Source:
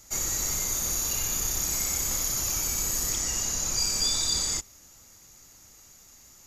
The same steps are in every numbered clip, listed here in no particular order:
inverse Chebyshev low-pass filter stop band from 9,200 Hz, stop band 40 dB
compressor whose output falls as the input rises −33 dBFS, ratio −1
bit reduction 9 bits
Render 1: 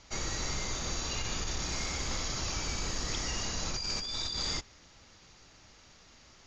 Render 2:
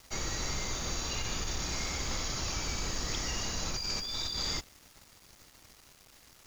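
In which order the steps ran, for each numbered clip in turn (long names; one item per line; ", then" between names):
bit reduction, then inverse Chebyshev low-pass filter, then compressor whose output falls as the input rises
inverse Chebyshev low-pass filter, then compressor whose output falls as the input rises, then bit reduction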